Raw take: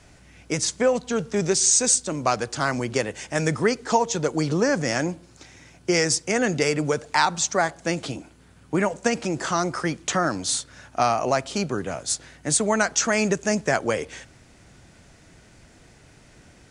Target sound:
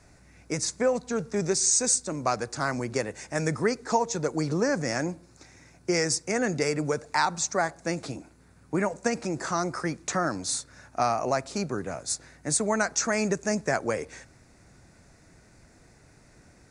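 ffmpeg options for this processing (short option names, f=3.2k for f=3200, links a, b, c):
-af "equalizer=f=3.1k:w=4.3:g=-14.5,volume=-4dB"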